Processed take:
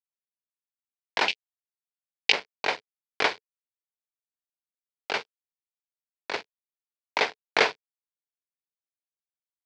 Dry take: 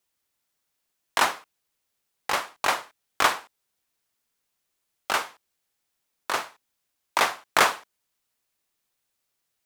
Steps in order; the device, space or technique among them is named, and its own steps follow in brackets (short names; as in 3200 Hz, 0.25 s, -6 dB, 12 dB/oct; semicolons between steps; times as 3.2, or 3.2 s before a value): blown loudspeaker (crossover distortion -31 dBFS; speaker cabinet 140–5100 Hz, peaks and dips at 440 Hz +9 dB, 1200 Hz -10 dB, 2300 Hz +5 dB, 4600 Hz +4 dB); 1.28–2.32 resonant high shelf 1900 Hz +12.5 dB, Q 3; gain -1 dB